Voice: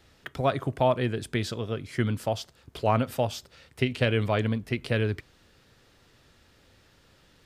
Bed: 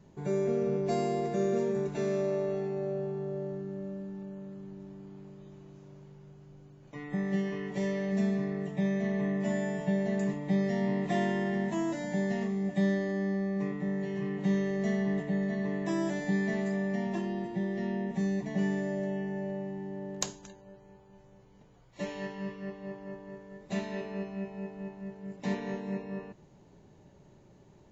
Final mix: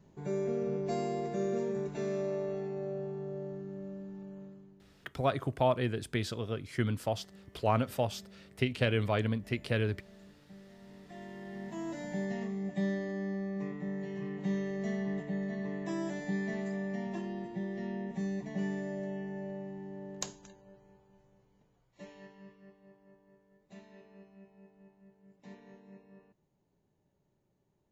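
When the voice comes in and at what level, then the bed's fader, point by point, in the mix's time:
4.80 s, −4.5 dB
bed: 0:04.43 −4 dB
0:05.14 −25.5 dB
0:10.80 −25.5 dB
0:11.99 −5 dB
0:20.75 −5 dB
0:22.92 −19 dB

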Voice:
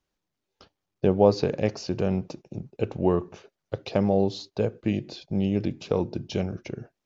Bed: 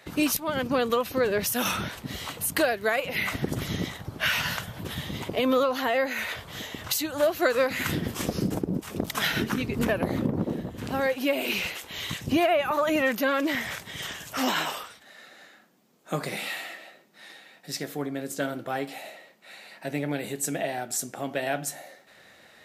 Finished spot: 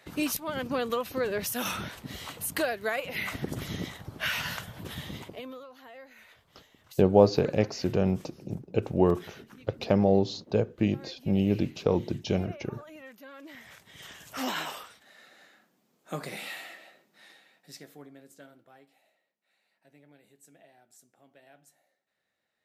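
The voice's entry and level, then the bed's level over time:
5.95 s, 0.0 dB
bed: 0:05.13 −5 dB
0:05.61 −23.5 dB
0:13.28 −23.5 dB
0:14.41 −6 dB
0:17.14 −6 dB
0:18.97 −28.5 dB

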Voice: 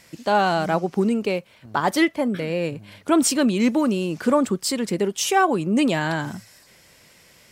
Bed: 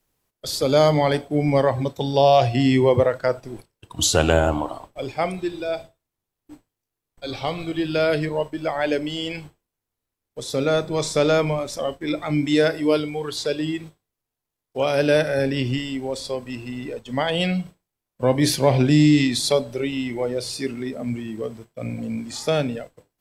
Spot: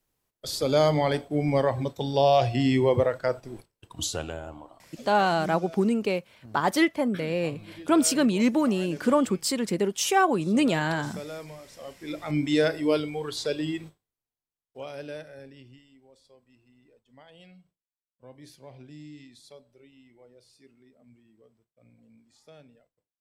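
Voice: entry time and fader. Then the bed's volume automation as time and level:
4.80 s, −3.0 dB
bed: 0:03.87 −5 dB
0:04.37 −20 dB
0:11.66 −20 dB
0:12.37 −4.5 dB
0:13.86 −4.5 dB
0:15.87 −30 dB

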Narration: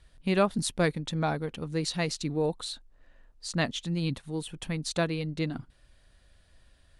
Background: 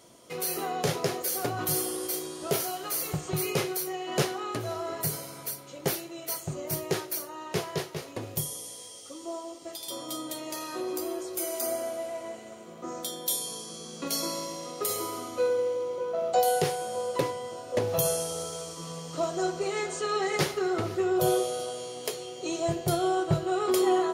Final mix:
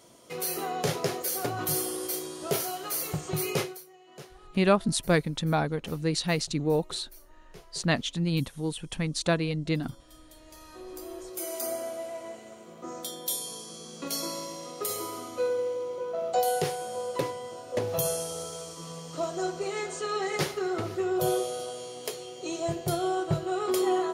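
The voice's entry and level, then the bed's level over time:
4.30 s, +2.5 dB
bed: 0:03.61 −0.5 dB
0:03.87 −20 dB
0:10.11 −20 dB
0:11.52 −2 dB

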